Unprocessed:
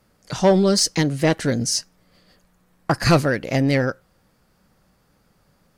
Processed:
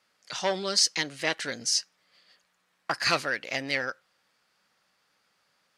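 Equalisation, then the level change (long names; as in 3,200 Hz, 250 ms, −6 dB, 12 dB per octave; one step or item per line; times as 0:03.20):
resonant band-pass 3,100 Hz, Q 0.72
0.0 dB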